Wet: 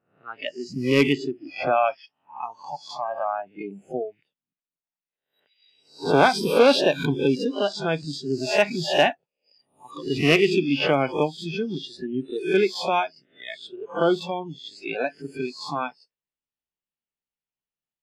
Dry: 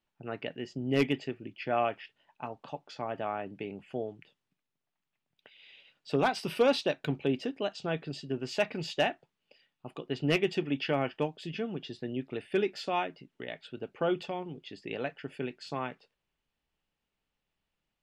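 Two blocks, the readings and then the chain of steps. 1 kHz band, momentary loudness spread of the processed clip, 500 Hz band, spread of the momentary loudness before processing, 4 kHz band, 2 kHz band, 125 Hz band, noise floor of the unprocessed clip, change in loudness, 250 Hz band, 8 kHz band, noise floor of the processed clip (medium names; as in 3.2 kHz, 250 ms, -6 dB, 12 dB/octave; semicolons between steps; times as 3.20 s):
+9.5 dB, 18 LU, +9.5 dB, 15 LU, +10.0 dB, +10.0 dB, +6.5 dB, under -85 dBFS, +9.5 dB, +8.5 dB, +11.0 dB, under -85 dBFS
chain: reverse spectral sustain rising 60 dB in 0.57 s; spectral noise reduction 24 dB; bass shelf 65 Hz -9.5 dB; trim +8 dB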